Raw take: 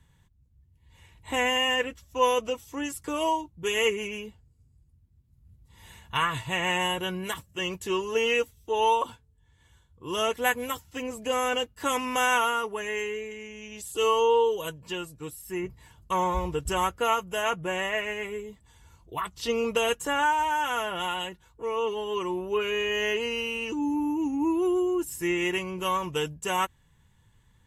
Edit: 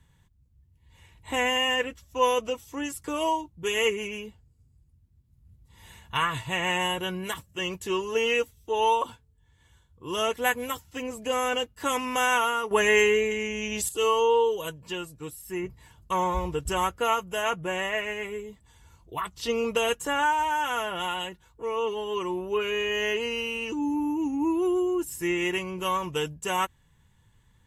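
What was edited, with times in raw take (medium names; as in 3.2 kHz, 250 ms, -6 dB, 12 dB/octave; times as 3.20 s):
12.71–13.89 s: gain +11 dB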